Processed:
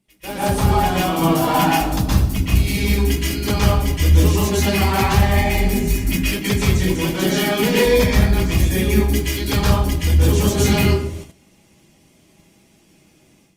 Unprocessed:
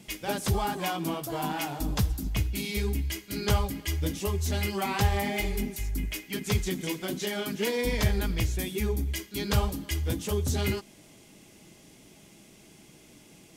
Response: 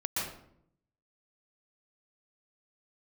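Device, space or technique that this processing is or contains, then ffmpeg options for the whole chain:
speakerphone in a meeting room: -filter_complex "[1:a]atrim=start_sample=2205[link_01];[0:a][link_01]afir=irnorm=-1:irlink=0,dynaudnorm=framelen=220:gausssize=3:maxgain=11dB,agate=range=-16dB:threshold=-31dB:ratio=16:detection=peak,volume=-1dB" -ar 48000 -c:a libopus -b:a 32k

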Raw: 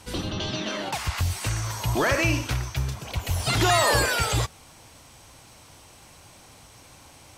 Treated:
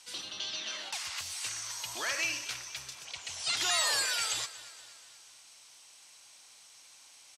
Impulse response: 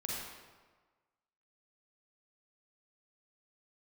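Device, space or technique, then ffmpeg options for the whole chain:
piezo pickup straight into a mixer: -filter_complex "[0:a]asettb=1/sr,asplit=3[link_01][link_02][link_03];[link_01]atrim=end=3.054[link_04];[link_02]atrim=start=3.05:end=3.57,asetpts=PTS-STARTPTS,afade=type=in:duration=0.004:curve=qsin,afade=type=out:start_time=0.516:duration=0.004:curve=qsin,lowpass=frequency=8800:width=0.5412,lowpass=frequency=8800:width=1.3066[link_05];[link_03]atrim=start=3.566[link_06];[link_04][link_05]acrossfade=duration=0.004:curve1=hsin:curve2=qsin[link_07];[link_07][link_06]acrossfade=duration=0.004:curve1=qsin:curve2=hsin,lowpass=6200,aderivative,aecho=1:1:237|474|711|948|1185:0.141|0.0777|0.0427|0.0235|0.0129,volume=3dB"

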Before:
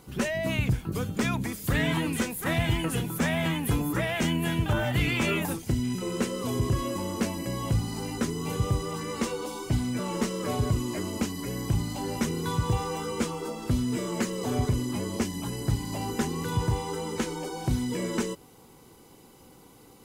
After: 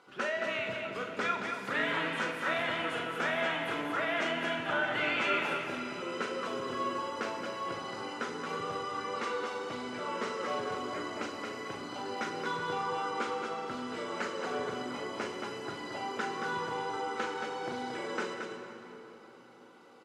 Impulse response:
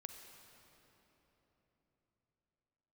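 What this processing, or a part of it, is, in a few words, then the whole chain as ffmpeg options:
station announcement: -filter_complex "[0:a]highpass=470,lowpass=3800,equalizer=frequency=1400:width_type=o:width=0.32:gain=9,aecho=1:1:40.82|224.5:0.447|0.501[link_01];[1:a]atrim=start_sample=2205[link_02];[link_01][link_02]afir=irnorm=-1:irlink=0,volume=2dB"

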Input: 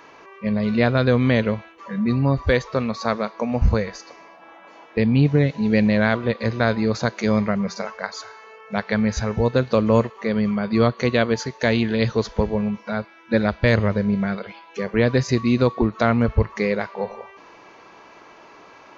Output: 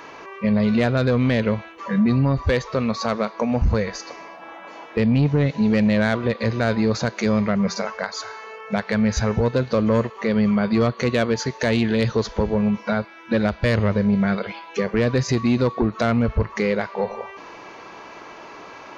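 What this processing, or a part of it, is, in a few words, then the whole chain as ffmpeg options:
soft clipper into limiter: -af "asoftclip=type=tanh:threshold=-11.5dB,alimiter=limit=-18.5dB:level=0:latency=1:release=299,volume=6.5dB"

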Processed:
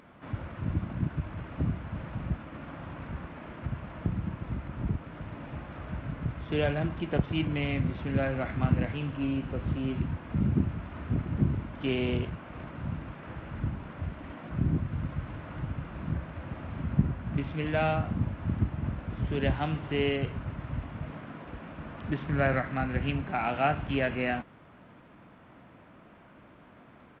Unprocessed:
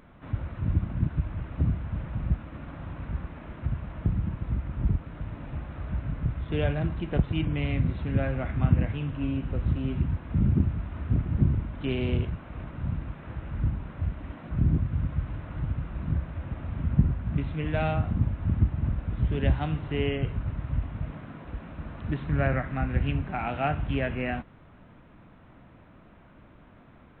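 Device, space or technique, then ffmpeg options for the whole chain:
Bluetooth headset: -af "highpass=frequency=200:poles=1,aresample=8000,aresample=44100,volume=2dB" -ar 32000 -c:a sbc -b:a 64k

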